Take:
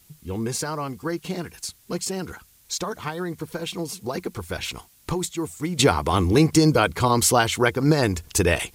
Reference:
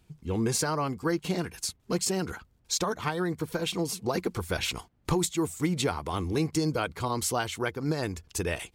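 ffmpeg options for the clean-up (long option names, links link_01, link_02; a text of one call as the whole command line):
ffmpeg -i in.wav -af "agate=range=-21dB:threshold=-45dB,asetnsamples=nb_out_samples=441:pad=0,asendcmd='5.79 volume volume -10.5dB',volume=0dB" out.wav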